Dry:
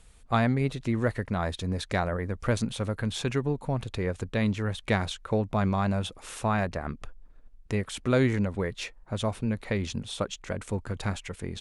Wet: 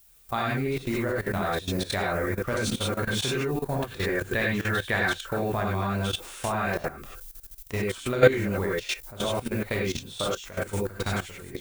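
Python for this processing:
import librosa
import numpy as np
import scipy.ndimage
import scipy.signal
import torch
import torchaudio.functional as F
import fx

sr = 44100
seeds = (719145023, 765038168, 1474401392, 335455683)

y = fx.low_shelf(x, sr, hz=340.0, db=-6.0)
y = fx.rev_gated(y, sr, seeds[0], gate_ms=120, shape='rising', drr_db=-6.0)
y = fx.dmg_noise_colour(y, sr, seeds[1], colour='violet', level_db=-47.0)
y = fx.level_steps(y, sr, step_db=15)
y = fx.peak_eq(y, sr, hz=1700.0, db=9.5, octaves=0.29, at=(3.59, 5.65))
y = F.gain(torch.from_numpy(y), 3.0).numpy()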